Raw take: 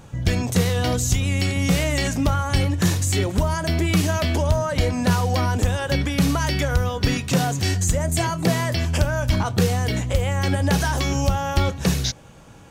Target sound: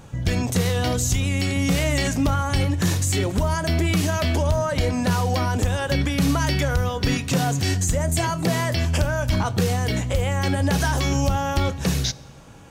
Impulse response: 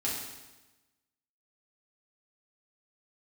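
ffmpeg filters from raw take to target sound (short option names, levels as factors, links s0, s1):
-filter_complex "[0:a]alimiter=limit=0.237:level=0:latency=1:release=34,asplit=2[s0][s1];[1:a]atrim=start_sample=2205[s2];[s1][s2]afir=irnorm=-1:irlink=0,volume=0.0562[s3];[s0][s3]amix=inputs=2:normalize=0"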